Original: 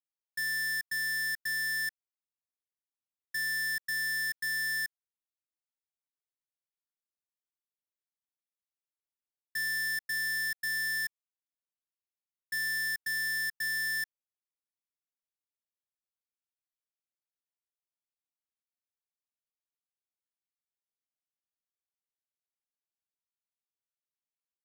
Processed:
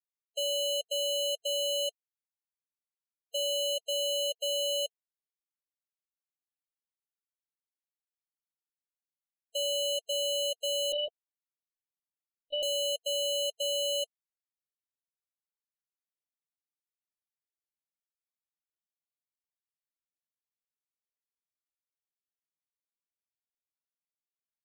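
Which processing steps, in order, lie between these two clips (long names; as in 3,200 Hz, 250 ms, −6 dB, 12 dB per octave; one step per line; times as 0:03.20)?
spectral peaks only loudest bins 16
ring modulation 1,200 Hz
0:10.92–0:12.63: linear-prediction vocoder at 8 kHz pitch kept
level +4.5 dB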